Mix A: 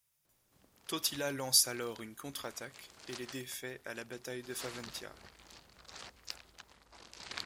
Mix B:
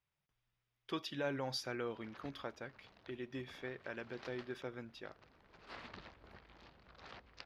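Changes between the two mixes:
background: entry +1.10 s
master: add high-frequency loss of the air 310 metres

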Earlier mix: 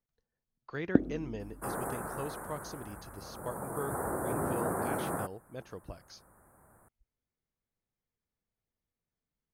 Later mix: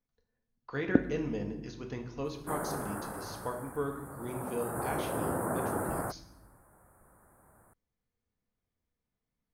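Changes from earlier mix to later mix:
speech: send on
second sound: entry +0.85 s

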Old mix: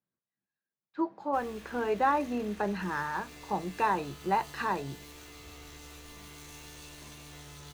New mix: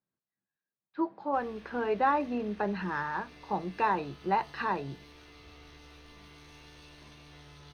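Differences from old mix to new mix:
background −3.5 dB
master: add Savitzky-Golay smoothing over 15 samples

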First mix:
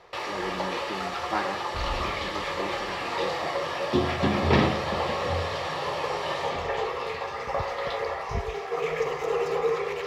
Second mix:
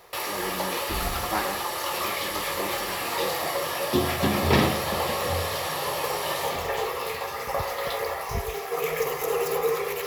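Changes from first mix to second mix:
first sound: remove high-frequency loss of the air 130 metres
second sound: entry −0.85 s

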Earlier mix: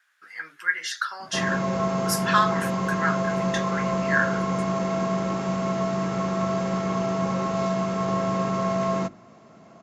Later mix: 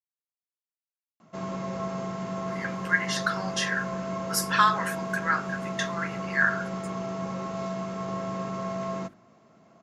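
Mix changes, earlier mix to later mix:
speech: entry +2.25 s
background −7.5 dB

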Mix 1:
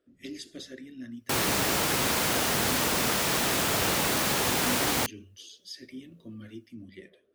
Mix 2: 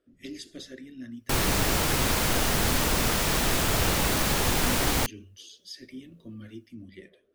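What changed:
background: remove high-pass filter 150 Hz 6 dB per octave
master: remove high-pass filter 85 Hz 6 dB per octave

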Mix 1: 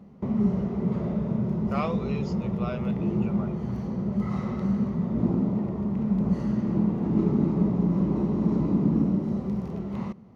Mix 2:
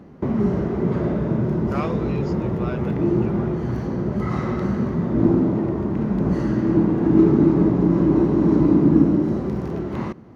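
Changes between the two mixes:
background +7.5 dB
master: add thirty-one-band graphic EQ 200 Hz −9 dB, 315 Hz +10 dB, 1,600 Hz +9 dB

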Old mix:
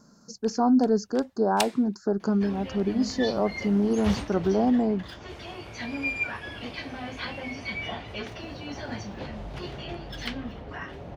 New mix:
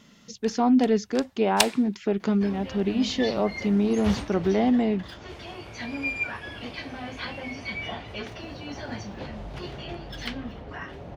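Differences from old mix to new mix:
speech: remove Chebyshev band-stop filter 1,600–4,400 Hz, order 4
first sound +7.0 dB

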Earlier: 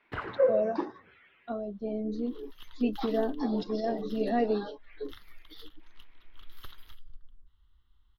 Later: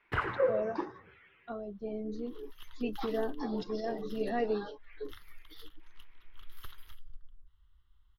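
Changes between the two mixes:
first sound +6.0 dB
master: add graphic EQ with 15 bands 250 Hz −8 dB, 630 Hz −6 dB, 4,000 Hz −5 dB, 10,000 Hz +4 dB

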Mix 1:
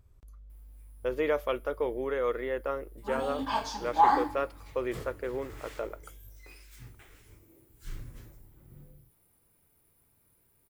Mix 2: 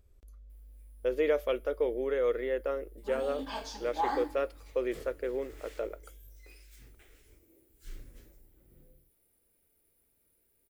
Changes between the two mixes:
background −3.5 dB
master: add octave-band graphic EQ 125/500/1,000 Hz −12/+4/−9 dB

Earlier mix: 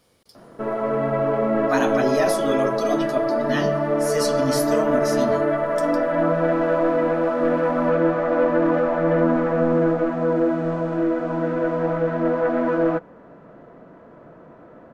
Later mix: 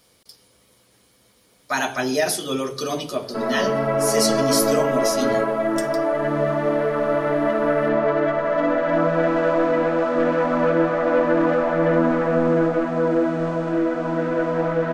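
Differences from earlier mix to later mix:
background: entry +2.75 s
master: add high-shelf EQ 2,200 Hz +8 dB

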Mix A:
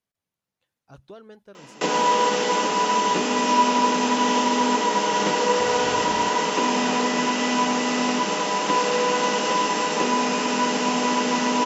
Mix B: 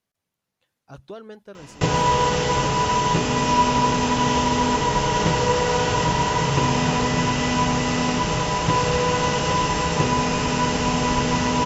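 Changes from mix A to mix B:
speech +5.5 dB
background: remove Butterworth high-pass 190 Hz 72 dB per octave

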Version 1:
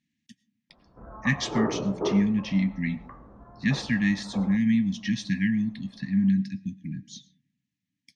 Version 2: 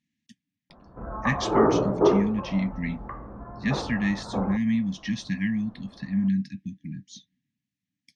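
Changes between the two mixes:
background +10.5 dB
reverb: off

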